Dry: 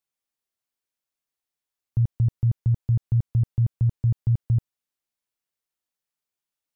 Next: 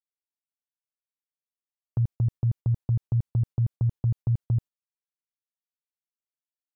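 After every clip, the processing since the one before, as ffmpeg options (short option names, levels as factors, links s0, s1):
-af "agate=range=0.112:threshold=0.0251:ratio=16:detection=peak,volume=0.708"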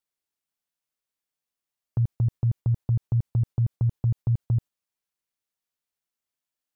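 -af "alimiter=limit=0.0631:level=0:latency=1,volume=2.11"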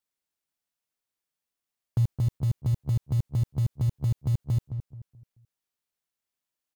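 -filter_complex "[0:a]acrusher=bits=7:mode=log:mix=0:aa=0.000001,asplit=2[s0][s1];[s1]adelay=216,lowpass=f=940:p=1,volume=0.398,asplit=2[s2][s3];[s3]adelay=216,lowpass=f=940:p=1,volume=0.33,asplit=2[s4][s5];[s5]adelay=216,lowpass=f=940:p=1,volume=0.33,asplit=2[s6][s7];[s7]adelay=216,lowpass=f=940:p=1,volume=0.33[s8];[s0][s2][s4][s6][s8]amix=inputs=5:normalize=0"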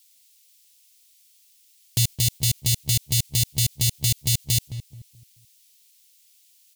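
-af "aexciter=amount=14.6:drive=8.3:freq=2100"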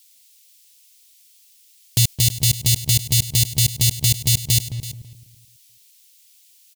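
-af "aecho=1:1:330:0.178,volume=1.68"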